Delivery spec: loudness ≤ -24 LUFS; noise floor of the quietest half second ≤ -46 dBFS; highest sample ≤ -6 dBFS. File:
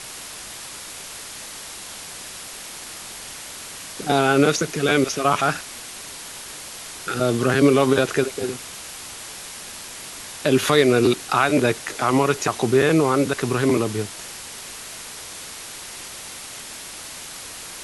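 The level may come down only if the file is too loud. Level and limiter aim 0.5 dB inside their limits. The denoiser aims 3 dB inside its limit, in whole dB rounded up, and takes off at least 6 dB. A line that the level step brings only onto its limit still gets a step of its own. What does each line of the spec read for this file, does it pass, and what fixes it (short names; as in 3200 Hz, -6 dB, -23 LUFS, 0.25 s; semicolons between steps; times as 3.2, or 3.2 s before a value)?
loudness -20.0 LUFS: fail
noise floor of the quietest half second -37 dBFS: fail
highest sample -3.5 dBFS: fail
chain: denoiser 8 dB, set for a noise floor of -37 dBFS; gain -4.5 dB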